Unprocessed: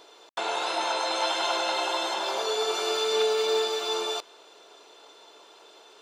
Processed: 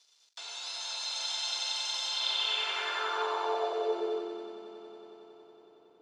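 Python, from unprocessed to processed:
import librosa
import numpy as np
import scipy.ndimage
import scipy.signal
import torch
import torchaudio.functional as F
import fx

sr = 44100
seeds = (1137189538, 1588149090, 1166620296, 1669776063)

y = fx.echo_swell(x, sr, ms=92, loudest=5, wet_db=-7.0)
y = np.sign(y) * np.maximum(np.abs(y) - 10.0 ** (-55.5 / 20.0), 0.0)
y = fx.filter_sweep_bandpass(y, sr, from_hz=5400.0, to_hz=210.0, start_s=2.04, end_s=4.6, q=2.1)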